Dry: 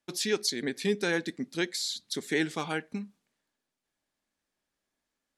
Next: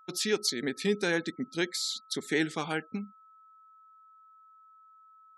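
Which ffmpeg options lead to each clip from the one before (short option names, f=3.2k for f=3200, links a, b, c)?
-af "afftfilt=real='re*gte(hypot(re,im),0.00355)':imag='im*gte(hypot(re,im),0.00355)':win_size=1024:overlap=0.75,aeval=exprs='val(0)+0.00178*sin(2*PI*1300*n/s)':c=same"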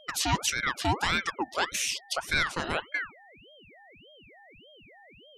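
-filter_complex "[0:a]asplit=2[a][b];[b]alimiter=limit=-23.5dB:level=0:latency=1,volume=1dB[c];[a][c]amix=inputs=2:normalize=0,aeval=exprs='val(0)*sin(2*PI*1200*n/s+1200*0.6/1.7*sin(2*PI*1.7*n/s))':c=same"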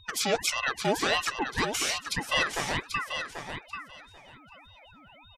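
-af "afftfilt=real='real(if(lt(b,1008),b+24*(1-2*mod(floor(b/24),2)),b),0)':imag='imag(if(lt(b,1008),b+24*(1-2*mod(floor(b/24),2)),b),0)':win_size=2048:overlap=0.75,aecho=1:1:788|1576|2364:0.422|0.0675|0.0108"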